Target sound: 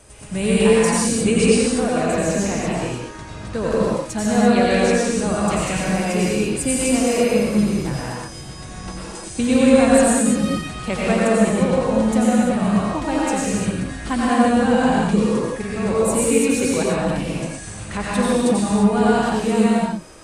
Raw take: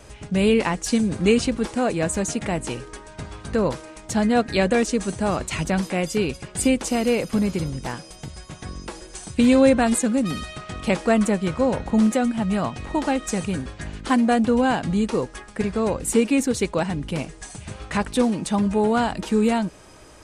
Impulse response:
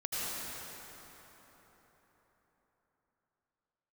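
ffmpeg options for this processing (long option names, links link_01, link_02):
-filter_complex "[0:a]asetnsamples=nb_out_samples=441:pad=0,asendcmd='1.72 equalizer g -5;3.47 equalizer g 4',equalizer=frequency=9000:width_type=o:width=0.46:gain=11.5[link_01];[1:a]atrim=start_sample=2205,afade=type=out:start_time=0.38:duration=0.01,atrim=end_sample=17199,asetrate=41013,aresample=44100[link_02];[link_01][link_02]afir=irnorm=-1:irlink=0,volume=-1dB"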